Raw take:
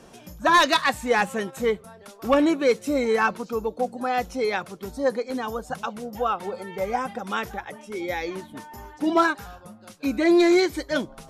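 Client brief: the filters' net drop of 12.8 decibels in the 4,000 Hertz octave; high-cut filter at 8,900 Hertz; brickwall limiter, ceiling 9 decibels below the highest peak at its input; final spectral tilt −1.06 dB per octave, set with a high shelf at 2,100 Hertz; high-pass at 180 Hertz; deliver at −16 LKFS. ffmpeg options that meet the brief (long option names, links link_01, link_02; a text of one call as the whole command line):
ffmpeg -i in.wav -af "highpass=180,lowpass=8900,highshelf=frequency=2100:gain=-8.5,equalizer=frequency=4000:width_type=o:gain=-7.5,volume=14dB,alimiter=limit=-5.5dB:level=0:latency=1" out.wav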